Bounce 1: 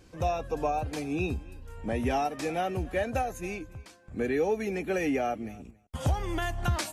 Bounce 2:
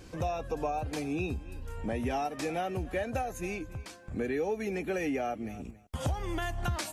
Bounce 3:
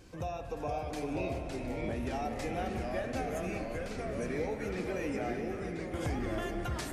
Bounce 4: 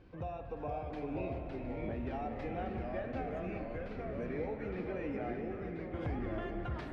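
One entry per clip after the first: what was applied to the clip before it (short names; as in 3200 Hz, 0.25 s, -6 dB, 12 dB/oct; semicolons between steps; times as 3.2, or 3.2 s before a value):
compressor 2:1, threshold -43 dBFS, peak gain reduction 11.5 dB; gain +6 dB
split-band echo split 530 Hz, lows 0.631 s, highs 0.385 s, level -11 dB; echoes that change speed 0.447 s, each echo -2 st, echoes 3; spring tank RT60 3 s, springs 49 ms, chirp 70 ms, DRR 6.5 dB; gain -5.5 dB
air absorption 370 m; gain -2.5 dB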